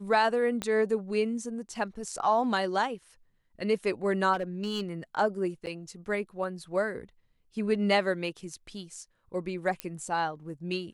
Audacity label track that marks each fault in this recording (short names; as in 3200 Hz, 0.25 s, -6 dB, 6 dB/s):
0.620000	0.620000	pop -17 dBFS
4.330000	4.810000	clipped -25.5 dBFS
5.660000	5.670000	gap 9.2 ms
9.800000	9.800000	pop -16 dBFS